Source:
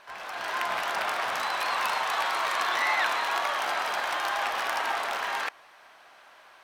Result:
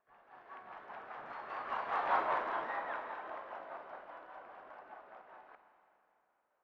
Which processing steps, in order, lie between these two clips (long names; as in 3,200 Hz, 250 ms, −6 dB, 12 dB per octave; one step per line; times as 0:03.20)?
source passing by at 0:02.14, 24 m/s, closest 3.6 metres
low-pass filter 1,100 Hz 12 dB per octave
in parallel at −1.5 dB: brickwall limiter −34.5 dBFS, peak gain reduction 12 dB
on the sum: rotating-speaker cabinet horn 5 Hz
four-comb reverb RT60 2.8 s, combs from 31 ms, DRR 7.5 dB
level +1 dB